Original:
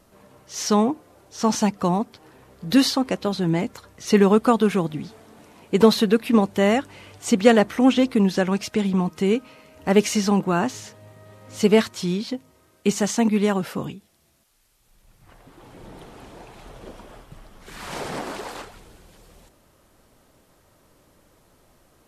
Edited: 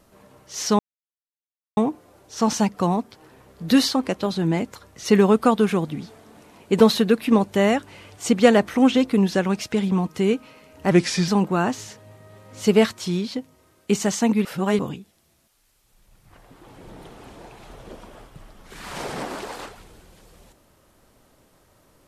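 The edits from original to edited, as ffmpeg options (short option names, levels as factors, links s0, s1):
-filter_complex "[0:a]asplit=6[s0][s1][s2][s3][s4][s5];[s0]atrim=end=0.79,asetpts=PTS-STARTPTS,afade=t=out:st=0.786:d=0.004:c=hsin,apad=pad_dur=0.98[s6];[s1]atrim=start=0.79:end=9.934,asetpts=PTS-STARTPTS,afade=t=in:d=0.004:c=hsin[s7];[s2]atrim=start=9.93:end=10.24,asetpts=PTS-STARTPTS,asetrate=37044,aresample=44100[s8];[s3]atrim=start=10.236:end=13.412[s9];[s4]atrim=start=13.408:end=13.752,asetpts=PTS-STARTPTS,areverse[s10];[s5]atrim=start=13.748[s11];[s6][s7]concat=n=2:v=0:a=1[s12];[s12][s8]acrossfade=d=0.004:c1=hsin:c2=hsin[s13];[s13][s9]acrossfade=d=0.004:c1=hsin:c2=hsin[s14];[s14][s10]acrossfade=d=0.004:c1=hsin:c2=hsin[s15];[s15][s11]acrossfade=d=0.004:c1=hsin:c2=hsin"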